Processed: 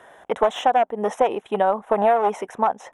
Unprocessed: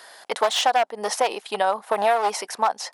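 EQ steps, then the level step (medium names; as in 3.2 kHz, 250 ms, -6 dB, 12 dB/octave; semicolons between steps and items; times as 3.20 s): Butterworth band-stop 4.6 kHz, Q 2; tilt EQ -4.5 dB/octave; 0.0 dB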